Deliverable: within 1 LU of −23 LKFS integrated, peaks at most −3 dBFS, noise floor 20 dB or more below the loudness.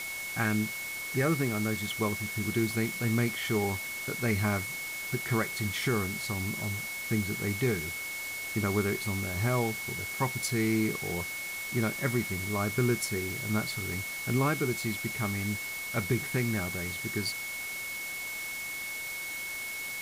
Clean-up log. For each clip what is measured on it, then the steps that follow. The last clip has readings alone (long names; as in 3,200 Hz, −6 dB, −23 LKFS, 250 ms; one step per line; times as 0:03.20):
interfering tone 2,200 Hz; level of the tone −36 dBFS; background noise floor −38 dBFS; target noise floor −51 dBFS; integrated loudness −31.0 LKFS; sample peak −16.0 dBFS; target loudness −23.0 LKFS
→ notch filter 2,200 Hz, Q 30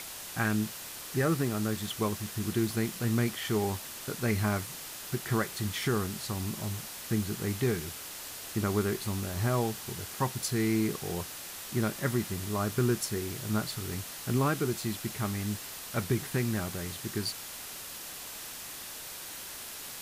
interfering tone none found; background noise floor −43 dBFS; target noise floor −53 dBFS
→ broadband denoise 10 dB, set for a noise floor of −43 dBFS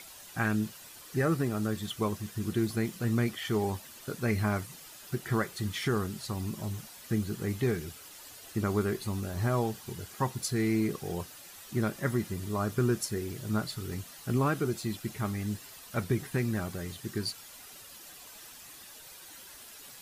background noise floor −50 dBFS; target noise floor −53 dBFS
→ broadband denoise 6 dB, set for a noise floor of −50 dBFS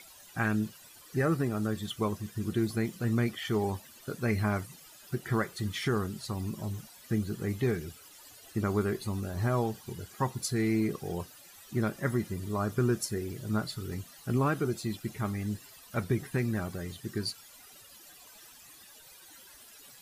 background noise floor −54 dBFS; integrated loudness −32.5 LKFS; sample peak −17.0 dBFS; target loudness −23.0 LKFS
→ level +9.5 dB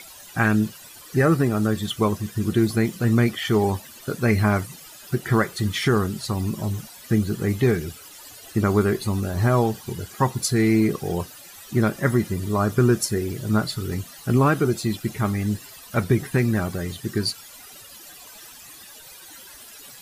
integrated loudness −23.0 LKFS; sample peak −7.5 dBFS; background noise floor −44 dBFS